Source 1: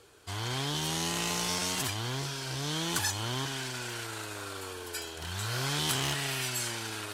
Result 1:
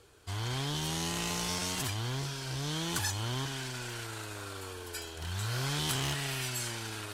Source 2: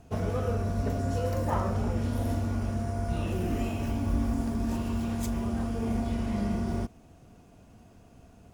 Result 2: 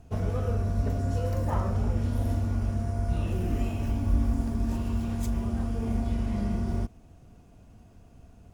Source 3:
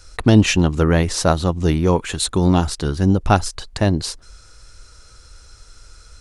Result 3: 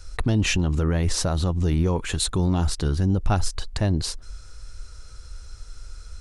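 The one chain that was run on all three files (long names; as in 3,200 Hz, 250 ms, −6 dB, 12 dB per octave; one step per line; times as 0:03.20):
low-shelf EQ 100 Hz +10.5 dB
brickwall limiter −9.5 dBFS
level −3 dB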